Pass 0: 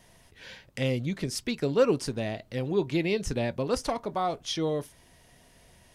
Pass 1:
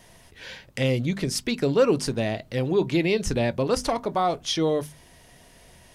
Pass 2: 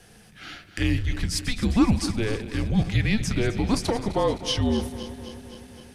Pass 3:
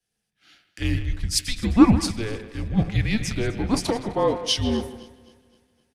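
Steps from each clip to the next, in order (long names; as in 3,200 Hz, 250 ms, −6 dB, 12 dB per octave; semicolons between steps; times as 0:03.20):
mains-hum notches 50/100/150/200/250 Hz; in parallel at −0.5 dB: brickwall limiter −20.5 dBFS, peak gain reduction 9 dB
feedback delay that plays each chunk backwards 129 ms, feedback 80%, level −13.5 dB; frequency shifter −220 Hz
far-end echo of a speakerphone 160 ms, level −8 dB; multiband upward and downward expander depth 100%; level −1 dB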